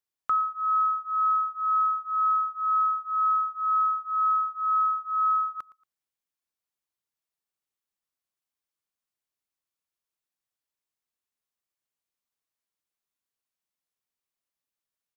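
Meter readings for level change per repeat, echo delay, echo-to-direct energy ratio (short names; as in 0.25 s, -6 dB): -11.0 dB, 0.115 s, -20.0 dB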